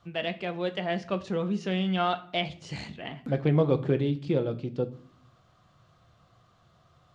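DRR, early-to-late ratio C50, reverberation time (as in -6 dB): 8.0 dB, 16.5 dB, 0.55 s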